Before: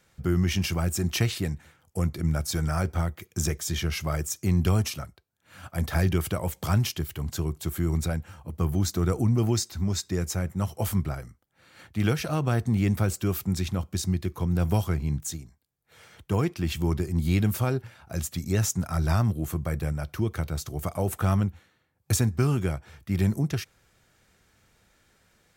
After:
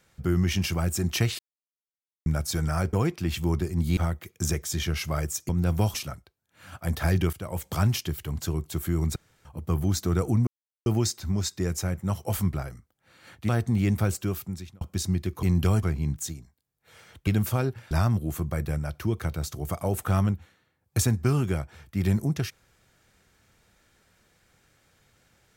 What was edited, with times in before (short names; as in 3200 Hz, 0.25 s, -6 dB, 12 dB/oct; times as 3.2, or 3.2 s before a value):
1.39–2.26 mute
4.45–4.85 swap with 14.42–14.87
6.24–6.55 fade in, from -16.5 dB
8.07–8.36 room tone
9.38 insert silence 0.39 s
12.01–12.48 cut
13.12–13.8 fade out
16.31–17.35 move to 2.93
17.99–19.05 cut